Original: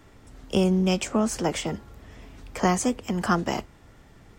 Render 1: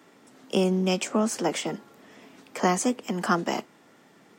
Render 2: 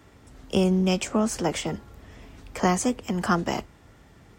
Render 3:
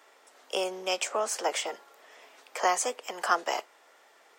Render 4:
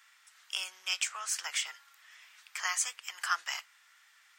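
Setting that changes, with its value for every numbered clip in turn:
high-pass, cutoff frequency: 190 Hz, 40 Hz, 500 Hz, 1.4 kHz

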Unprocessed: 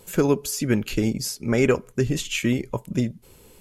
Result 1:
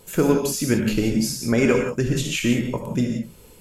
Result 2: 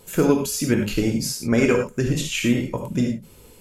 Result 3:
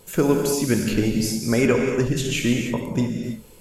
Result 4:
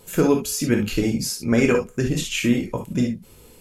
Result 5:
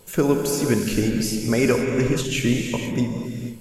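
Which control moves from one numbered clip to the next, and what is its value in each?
gated-style reverb, gate: 200 ms, 130 ms, 340 ms, 90 ms, 520 ms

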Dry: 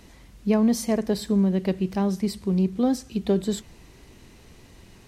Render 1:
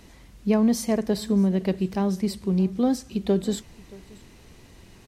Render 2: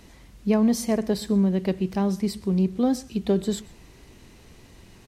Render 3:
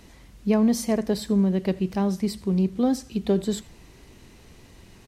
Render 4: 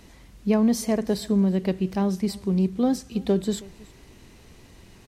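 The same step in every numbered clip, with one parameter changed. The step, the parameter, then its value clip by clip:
delay, time: 626 ms, 126 ms, 84 ms, 321 ms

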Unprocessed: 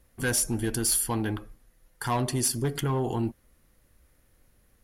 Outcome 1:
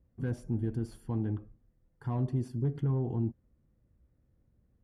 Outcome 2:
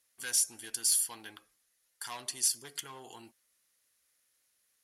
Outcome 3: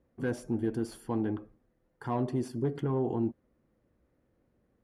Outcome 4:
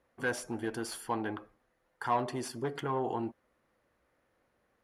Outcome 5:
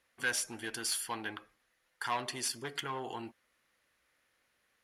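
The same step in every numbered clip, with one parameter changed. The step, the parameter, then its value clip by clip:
band-pass filter, frequency: 120 Hz, 6.6 kHz, 310 Hz, 840 Hz, 2.3 kHz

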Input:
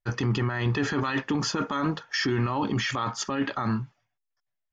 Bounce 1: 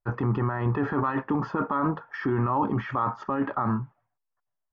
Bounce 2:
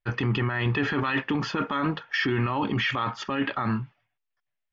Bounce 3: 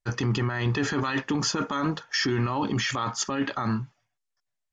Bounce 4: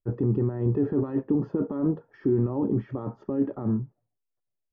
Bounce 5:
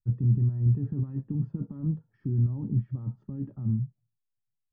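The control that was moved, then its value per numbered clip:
resonant low-pass, frequency: 1.1 kHz, 2.8 kHz, 7.9 kHz, 430 Hz, 150 Hz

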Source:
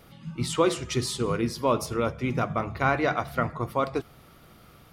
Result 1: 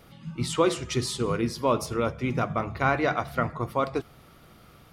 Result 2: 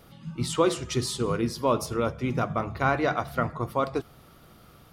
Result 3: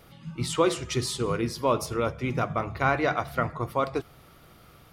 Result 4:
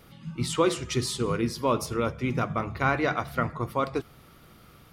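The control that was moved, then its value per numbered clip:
peaking EQ, frequency: 15 kHz, 2.2 kHz, 220 Hz, 680 Hz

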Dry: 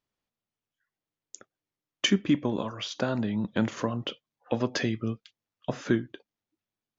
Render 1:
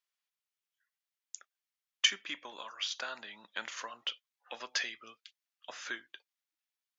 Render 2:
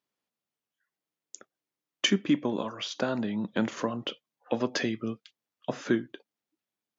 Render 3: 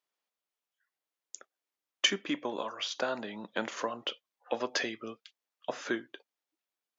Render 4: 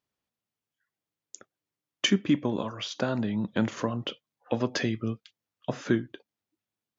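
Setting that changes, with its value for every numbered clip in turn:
high-pass, cutoff frequency: 1.5 kHz, 180 Hz, 510 Hz, 53 Hz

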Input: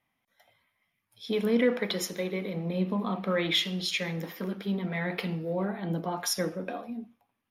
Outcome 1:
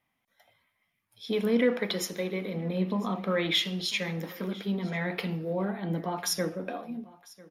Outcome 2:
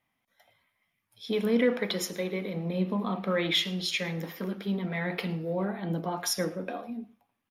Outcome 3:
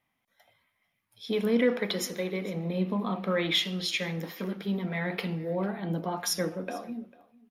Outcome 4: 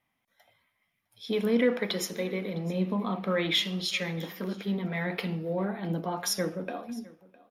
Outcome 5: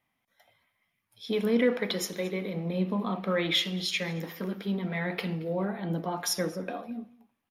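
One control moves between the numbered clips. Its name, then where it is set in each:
delay, time: 998 ms, 110 ms, 447 ms, 658 ms, 225 ms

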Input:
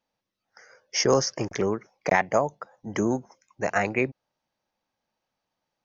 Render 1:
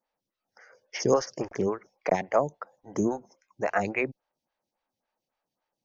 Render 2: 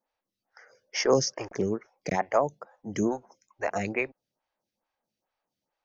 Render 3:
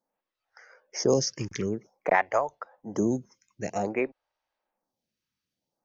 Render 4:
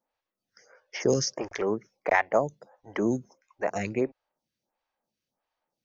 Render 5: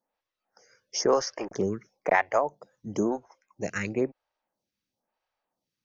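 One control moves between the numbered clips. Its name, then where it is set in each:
lamp-driven phase shifter, rate: 3.6 Hz, 2.3 Hz, 0.52 Hz, 1.5 Hz, 1 Hz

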